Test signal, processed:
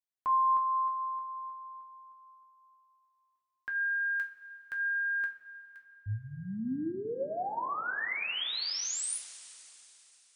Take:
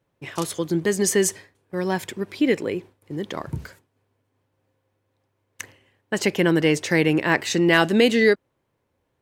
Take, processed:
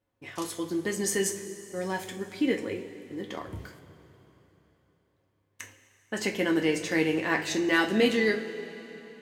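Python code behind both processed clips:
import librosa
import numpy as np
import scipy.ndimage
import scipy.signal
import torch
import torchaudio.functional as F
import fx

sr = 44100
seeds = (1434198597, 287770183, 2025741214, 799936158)

y = fx.rev_double_slope(x, sr, seeds[0], early_s=0.28, late_s=3.6, knee_db=-18, drr_db=1.5)
y = y * librosa.db_to_amplitude(-8.5)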